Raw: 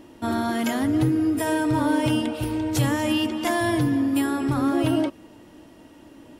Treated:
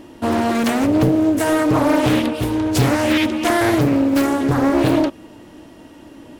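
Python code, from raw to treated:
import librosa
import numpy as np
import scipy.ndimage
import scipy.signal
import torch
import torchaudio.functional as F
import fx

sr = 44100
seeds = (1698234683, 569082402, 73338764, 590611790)

y = fx.doppler_dist(x, sr, depth_ms=0.88)
y = y * 10.0 ** (6.5 / 20.0)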